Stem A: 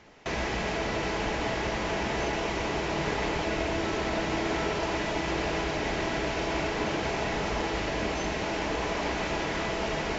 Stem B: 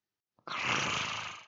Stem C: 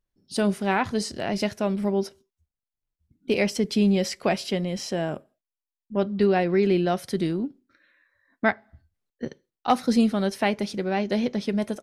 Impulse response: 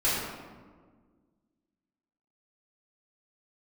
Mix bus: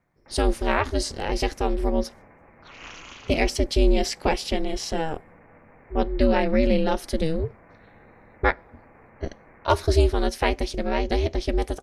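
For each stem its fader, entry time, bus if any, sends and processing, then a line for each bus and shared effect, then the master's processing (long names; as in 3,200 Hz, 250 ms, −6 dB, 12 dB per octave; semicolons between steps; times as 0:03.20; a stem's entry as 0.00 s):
−16.0 dB, 0.00 s, no send, Butterworth low-pass 2,200 Hz 72 dB per octave; brickwall limiter −25.5 dBFS, peak gain reduction 7.5 dB
−9.0 dB, 2.15 s, no send, no processing
+3.0 dB, 0.00 s, no send, no processing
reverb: not used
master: parametric band 5,500 Hz +2.5 dB 2.4 octaves; ring modulation 160 Hz; low-shelf EQ 76 Hz +6 dB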